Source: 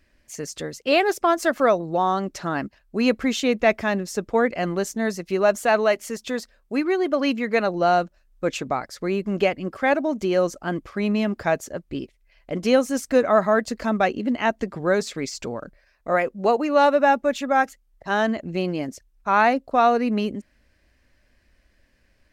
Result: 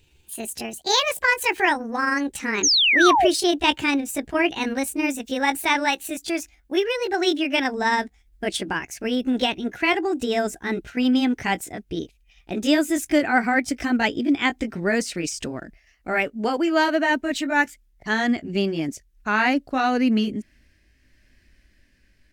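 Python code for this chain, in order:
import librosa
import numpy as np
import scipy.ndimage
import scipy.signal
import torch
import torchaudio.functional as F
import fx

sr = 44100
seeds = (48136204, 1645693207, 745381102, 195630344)

y = fx.pitch_glide(x, sr, semitones=7.0, runs='ending unshifted')
y = fx.band_shelf(y, sr, hz=770.0, db=-8.5, octaves=1.7)
y = fx.spec_paint(y, sr, seeds[0], shape='fall', start_s=2.63, length_s=0.65, low_hz=580.0, high_hz=6800.0, level_db=-22.0)
y = y * 10.0 ** (4.5 / 20.0)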